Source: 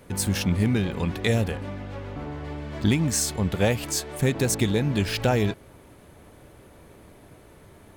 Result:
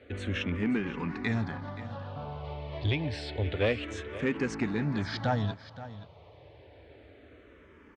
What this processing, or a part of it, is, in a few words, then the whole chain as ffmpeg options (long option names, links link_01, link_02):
barber-pole phaser into a guitar amplifier: -filter_complex "[0:a]lowshelf=frequency=120:gain=5.5,asplit=2[link_01][link_02];[link_02]afreqshift=-0.28[link_03];[link_01][link_03]amix=inputs=2:normalize=1,asoftclip=type=tanh:threshold=-16.5dB,highpass=96,equalizer=frequency=130:width_type=q:width=4:gain=-5,equalizer=frequency=190:width_type=q:width=4:gain=-9,equalizer=frequency=350:width_type=q:width=4:gain=-4,lowpass=frequency=4200:width=0.5412,lowpass=frequency=4200:width=1.3066,aecho=1:1:526:0.178"